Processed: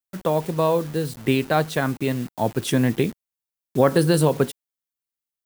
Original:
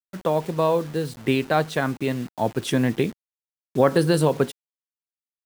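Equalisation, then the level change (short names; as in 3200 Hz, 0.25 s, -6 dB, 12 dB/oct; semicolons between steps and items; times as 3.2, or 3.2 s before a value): low shelf 180 Hz +4 dB; high shelf 9100 Hz +9 dB; 0.0 dB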